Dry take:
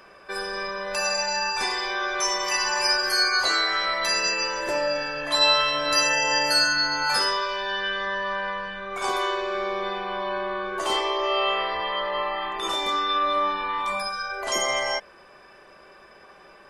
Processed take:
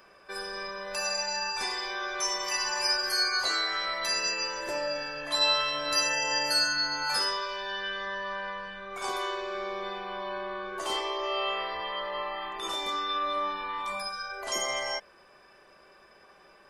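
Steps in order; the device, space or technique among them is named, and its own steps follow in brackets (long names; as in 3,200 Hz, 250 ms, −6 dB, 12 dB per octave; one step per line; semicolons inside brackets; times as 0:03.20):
presence and air boost (parametric band 5,000 Hz +2 dB; high-shelf EQ 10,000 Hz +6.5 dB)
level −7 dB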